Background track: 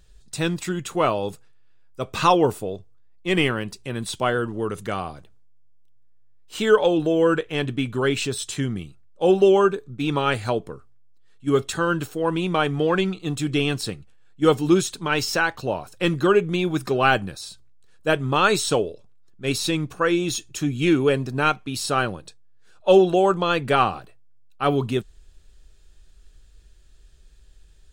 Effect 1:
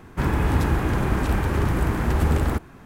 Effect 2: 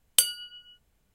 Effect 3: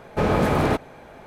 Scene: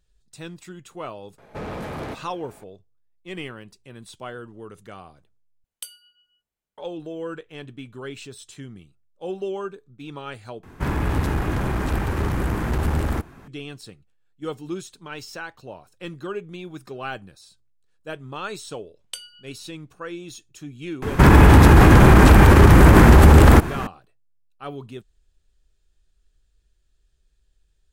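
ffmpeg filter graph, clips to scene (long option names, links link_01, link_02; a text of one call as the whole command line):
ffmpeg -i bed.wav -i cue0.wav -i cue1.wav -i cue2.wav -filter_complex "[2:a]asplit=2[link_01][link_02];[1:a]asplit=2[link_03][link_04];[0:a]volume=-13.5dB[link_05];[3:a]asoftclip=type=tanh:threshold=-21.5dB[link_06];[link_01]lowshelf=frequency=210:gain=-10.5[link_07];[link_03]aeval=exprs='clip(val(0),-1,0.0891)':channel_layout=same[link_08];[link_02]lowpass=6400[link_09];[link_04]alimiter=level_in=19dB:limit=-1dB:release=50:level=0:latency=1[link_10];[link_05]asplit=3[link_11][link_12][link_13];[link_11]atrim=end=5.644[link_14];[link_07]atrim=end=1.14,asetpts=PTS-STARTPTS,volume=-15.5dB[link_15];[link_12]atrim=start=6.776:end=10.634[link_16];[link_08]atrim=end=2.85,asetpts=PTS-STARTPTS,volume=-0.5dB[link_17];[link_13]atrim=start=13.476[link_18];[link_06]atrim=end=1.26,asetpts=PTS-STARTPTS,volume=-7dB,afade=type=in:duration=0.004:curve=hsin,afade=type=out:start_time=1.256:duration=0.004:curve=hsin,adelay=1380[link_19];[link_09]atrim=end=1.14,asetpts=PTS-STARTPTS,volume=-9dB,afade=type=in:duration=0.004:curve=hsin,afade=type=out:start_time=1.136:duration=0.004:curve=hsin,adelay=18950[link_20];[link_10]atrim=end=2.85,asetpts=PTS-STARTPTS,volume=-1dB,afade=type=in:duration=0.004:curve=hsin,afade=type=out:start_time=2.846:duration=0.004:curve=hsin,adelay=21020[link_21];[link_14][link_15]acrossfade=duration=0.004:curve1=hsin:curve2=hsin[link_22];[link_22][link_16]acrossfade=duration=0.004:curve1=hsin:curve2=hsin[link_23];[link_23][link_17]acrossfade=duration=0.004:curve1=hsin:curve2=hsin[link_24];[link_24][link_18]acrossfade=duration=0.004:curve1=hsin:curve2=hsin[link_25];[link_25][link_19][link_20][link_21]amix=inputs=4:normalize=0" out.wav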